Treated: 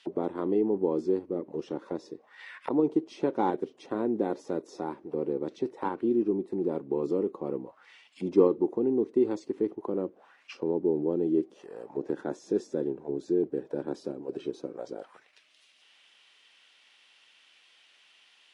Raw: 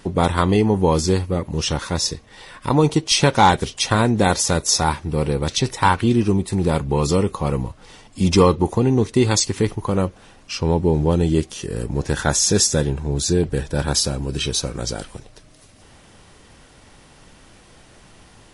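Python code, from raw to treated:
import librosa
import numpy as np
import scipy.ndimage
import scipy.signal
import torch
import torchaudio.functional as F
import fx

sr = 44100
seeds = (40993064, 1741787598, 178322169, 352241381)

p1 = scipy.signal.sosfilt(scipy.signal.butter(2, 230.0, 'highpass', fs=sr, output='sos'), x)
p2 = fx.level_steps(p1, sr, step_db=14)
p3 = p1 + (p2 * 10.0 ** (-1.5 / 20.0))
p4 = fx.auto_wah(p3, sr, base_hz=340.0, top_hz=3400.0, q=2.5, full_db=-19.5, direction='down')
y = p4 * 10.0 ** (-5.0 / 20.0)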